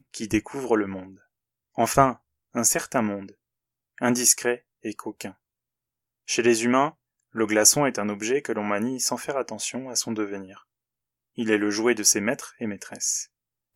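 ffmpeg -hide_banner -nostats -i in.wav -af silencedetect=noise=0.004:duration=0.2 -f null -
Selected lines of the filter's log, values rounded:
silence_start: 1.17
silence_end: 1.77 | silence_duration: 0.59
silence_start: 2.16
silence_end: 2.54 | silence_duration: 0.38
silence_start: 3.32
silence_end: 3.98 | silence_duration: 0.66
silence_start: 4.59
silence_end: 4.84 | silence_duration: 0.25
silence_start: 5.32
silence_end: 6.27 | silence_duration: 0.95
silence_start: 6.92
silence_end: 7.35 | silence_duration: 0.43
silence_start: 10.61
silence_end: 11.37 | silence_duration: 0.76
silence_start: 13.26
silence_end: 13.76 | silence_duration: 0.50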